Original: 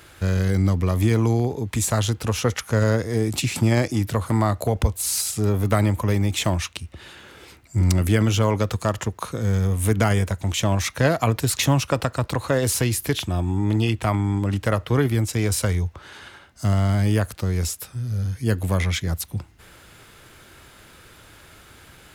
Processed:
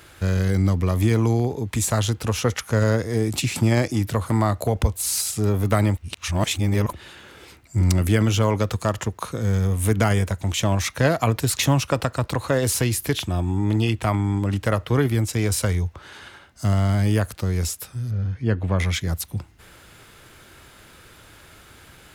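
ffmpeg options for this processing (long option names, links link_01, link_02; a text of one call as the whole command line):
ffmpeg -i in.wav -filter_complex "[0:a]asplit=3[link_01][link_02][link_03];[link_01]afade=type=out:start_time=18.1:duration=0.02[link_04];[link_02]lowpass=2700,afade=type=in:start_time=18.1:duration=0.02,afade=type=out:start_time=18.78:duration=0.02[link_05];[link_03]afade=type=in:start_time=18.78:duration=0.02[link_06];[link_04][link_05][link_06]amix=inputs=3:normalize=0,asplit=3[link_07][link_08][link_09];[link_07]atrim=end=5.972[link_10];[link_08]atrim=start=5.968:end=6.932,asetpts=PTS-STARTPTS,areverse[link_11];[link_09]atrim=start=6.928[link_12];[link_10][link_11]acrossfade=duration=0.004:curve1=hsin:curve2=hsin[link_13];[link_13][link_12]acrossfade=duration=0.004:curve1=hsin:curve2=hsin" out.wav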